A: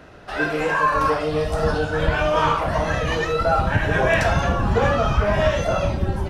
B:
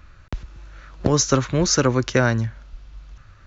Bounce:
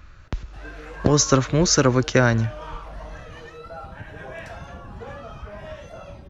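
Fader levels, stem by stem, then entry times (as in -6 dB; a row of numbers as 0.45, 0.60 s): -18.5, +1.0 dB; 0.25, 0.00 s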